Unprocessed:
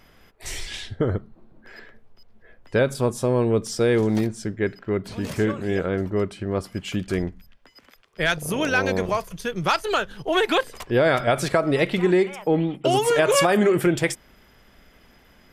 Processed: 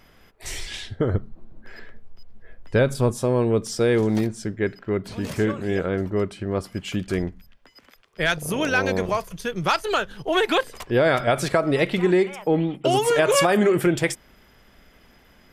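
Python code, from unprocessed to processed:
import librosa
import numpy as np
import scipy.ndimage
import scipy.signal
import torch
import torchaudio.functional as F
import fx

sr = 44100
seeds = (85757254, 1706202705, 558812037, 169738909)

y = fx.low_shelf(x, sr, hz=92.0, db=12.0, at=(1.14, 3.14))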